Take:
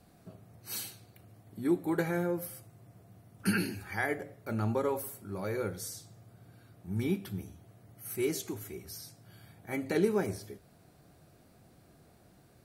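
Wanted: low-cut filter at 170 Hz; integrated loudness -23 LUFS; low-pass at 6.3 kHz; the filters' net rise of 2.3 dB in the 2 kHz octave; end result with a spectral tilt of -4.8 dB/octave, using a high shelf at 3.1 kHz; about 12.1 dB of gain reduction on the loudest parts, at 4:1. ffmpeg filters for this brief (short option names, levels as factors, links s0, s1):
-af "highpass=170,lowpass=6300,equalizer=f=2000:t=o:g=5.5,highshelf=f=3100:g=-8,acompressor=threshold=0.0126:ratio=4,volume=10.6"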